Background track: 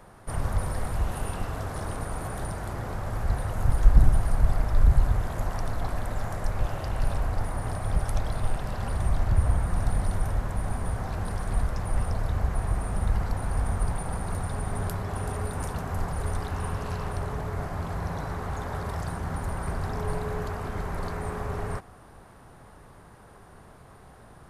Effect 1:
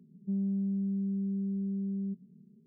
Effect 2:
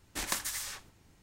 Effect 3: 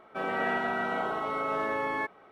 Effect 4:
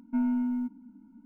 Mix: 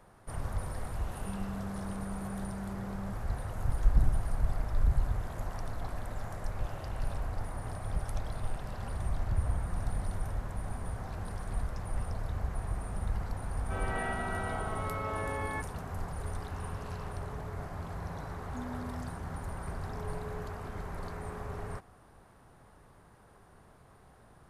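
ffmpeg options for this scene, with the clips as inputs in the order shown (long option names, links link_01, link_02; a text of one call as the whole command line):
ffmpeg -i bed.wav -i cue0.wav -i cue1.wav -i cue2.wav -i cue3.wav -filter_complex "[0:a]volume=-8dB[link_01];[1:a]acompressor=threshold=-35dB:ratio=6:attack=3.2:release=140:knee=1:detection=peak,atrim=end=2.66,asetpts=PTS-STARTPTS,volume=-3.5dB,afade=type=in:duration=0.004:curve=hsin,afade=type=out:start_time=2.656:duration=0.004:curve=hsin,adelay=990[link_02];[3:a]atrim=end=2.31,asetpts=PTS-STARTPTS,volume=-6.5dB,afade=type=in:duration=0.004:curve=hsin,afade=type=out:start_time=2.306:duration=0.004:curve=hsin,adelay=13550[link_03];[4:a]atrim=end=1.25,asetpts=PTS-STARTPTS,volume=-15dB,afade=type=in:duration=0.004:curve=hsin,afade=type=out:start_time=1.246:duration=0.004:curve=hsin,adelay=18410[link_04];[link_01][link_02][link_03][link_04]amix=inputs=4:normalize=0" out.wav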